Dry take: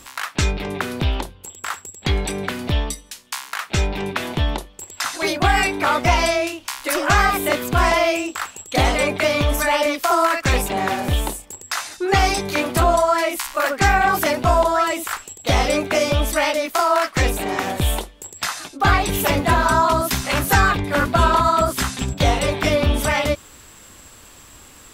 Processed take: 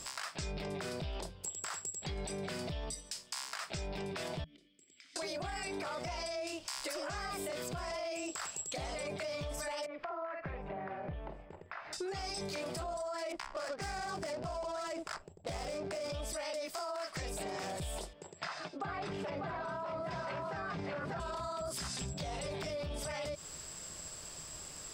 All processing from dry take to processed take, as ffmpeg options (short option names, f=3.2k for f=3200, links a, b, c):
-filter_complex "[0:a]asettb=1/sr,asplit=3[a][b][c];[a]atrim=end=4.444[d];[b]atrim=start=4.44:end=5.16,asetpts=PTS-STARTPTS,afade=t=in:d=0.004:c=qsin,afade=t=out:st=0.716:d=0.004:c=qsin,highshelf=f=7.1k:g=9,acompressor=threshold=-32dB:ratio=12:attack=3.2:release=140:knee=1:detection=peak,asplit=3[e][f][g];[e]bandpass=f=270:t=q:w=8,volume=0dB[h];[f]bandpass=f=2.29k:t=q:w=8,volume=-6dB[i];[g]bandpass=f=3.01k:t=q:w=8,volume=-9dB[j];[h][i][j]amix=inputs=3:normalize=0[k];[c]atrim=start=5.156[l];[d][k]acrossfade=d=0.004:c1=hsin:c2=qsin[m];[m][l]acrossfade=d=0.004:c1=qsin:c2=hsin,asettb=1/sr,asplit=3[n][o][p];[n]atrim=end=9.864[q];[o]atrim=start=9.86:end=11.93,asetpts=PTS-STARTPTS,afade=t=in:d=0.004:c=qsin,afade=t=out:st=2.066:d=0.004:c=qsin,lowpass=f=2.2k:w=0.5412,lowpass=f=2.2k:w=1.3066,acompressor=threshold=-37dB:ratio=3:attack=3.2:release=140:knee=1:detection=peak,asplit=2[r][s];[s]adelay=47,volume=-14dB[t];[r][t]amix=inputs=2:normalize=0,atrim=end_sample=91287[u];[p]atrim=start=11.926[v];[q][u]acrossfade=d=0.004:c1=hsin:c2=qsin[w];[w][v]acrossfade=d=0.004:c1=qsin:c2=hsin,asettb=1/sr,asplit=3[x][y][z];[x]atrim=end=13.324[aa];[y]atrim=start=13.32:end=16.1,asetpts=PTS-STARTPTS,afade=t=in:d=0.004:c=qsin,afade=t=out:st=2.776:d=0.004:c=qsin,adynamicsmooth=sensitivity=2:basefreq=590,adynamicequalizer=threshold=0.0112:dfrequency=5400:dqfactor=0.7:tfrequency=5400:tqfactor=0.7:attack=5:release=100:ratio=0.375:range=3.5:mode=boostabove:tftype=highshelf[ab];[z]atrim=start=16.096[ac];[aa][ab]acrossfade=d=0.004:c1=hsin:c2=qsin[ad];[ad][ac]acrossfade=d=0.004:c1=qsin:c2=hsin,asettb=1/sr,asplit=3[ae][af][ag];[ae]atrim=end=18.134[ah];[af]atrim=start=18.13:end=21.2,asetpts=PTS-STARTPTS,afade=t=in:d=0.004:c=qsin,afade=t=out:st=3.066:d=0.004:c=qsin,highpass=120,lowpass=2.4k,aecho=1:1:594:0.562,atrim=end_sample=135387[ai];[ag]atrim=start=21.196[aj];[ah][ai]acrossfade=d=0.004:c1=hsin:c2=qsin[ak];[ak][aj]acrossfade=d=0.004:c1=qsin:c2=hsin,equalizer=f=160:t=o:w=0.33:g=11,equalizer=f=250:t=o:w=0.33:g=-6,equalizer=f=400:t=o:w=0.33:g=3,equalizer=f=630:t=o:w=0.33:g=8,equalizer=f=5k:t=o:w=0.33:g=12,equalizer=f=8k:t=o:w=0.33:g=9,equalizer=f=12.5k:t=o:w=0.33:g=-9,alimiter=limit=-19dB:level=0:latency=1:release=45,acompressor=threshold=-29dB:ratio=6,volume=-7.5dB"